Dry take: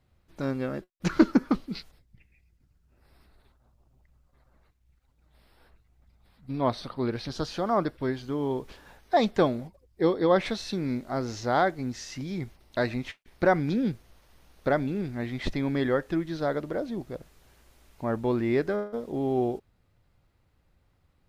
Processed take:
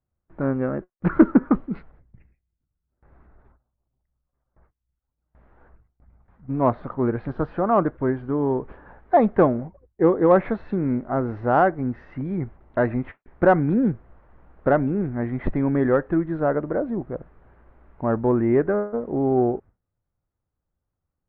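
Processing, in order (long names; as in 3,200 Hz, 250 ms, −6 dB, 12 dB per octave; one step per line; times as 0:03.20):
low-pass filter 1,600 Hz 24 dB per octave
in parallel at −9 dB: soft clipping −17.5 dBFS, distortion −14 dB
on the sum: noise gate with hold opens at −50 dBFS
level +4 dB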